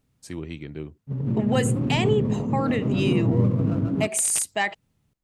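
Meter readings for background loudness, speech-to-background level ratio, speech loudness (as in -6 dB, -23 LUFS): -24.5 LUFS, -2.0 dB, -26.5 LUFS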